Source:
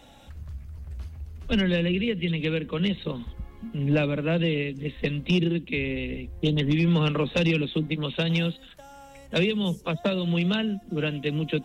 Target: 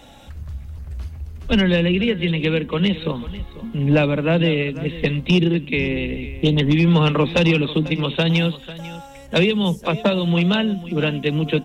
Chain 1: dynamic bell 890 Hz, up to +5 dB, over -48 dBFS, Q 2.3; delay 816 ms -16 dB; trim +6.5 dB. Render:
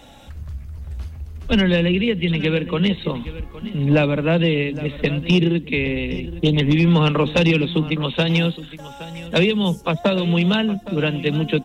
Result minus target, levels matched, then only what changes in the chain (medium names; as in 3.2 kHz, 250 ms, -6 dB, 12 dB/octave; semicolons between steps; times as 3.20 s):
echo 321 ms late
change: delay 495 ms -16 dB